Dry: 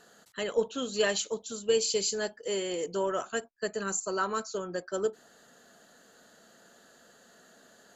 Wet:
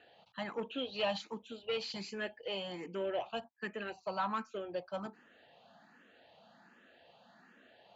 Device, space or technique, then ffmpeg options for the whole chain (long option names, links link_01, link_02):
barber-pole phaser into a guitar amplifier: -filter_complex "[0:a]asplit=2[link_01][link_02];[link_02]afreqshift=1.3[link_03];[link_01][link_03]amix=inputs=2:normalize=1,asoftclip=type=tanh:threshold=-26dB,highpass=84,equalizer=frequency=84:width_type=q:width=4:gain=6,equalizer=frequency=420:width_type=q:width=4:gain=-8,equalizer=frequency=840:width_type=q:width=4:gain=7,equalizer=frequency=1400:width_type=q:width=4:gain=-5,equalizer=frequency=2500:width_type=q:width=4:gain=9,lowpass=frequency=3700:width=0.5412,lowpass=frequency=3700:width=1.3066"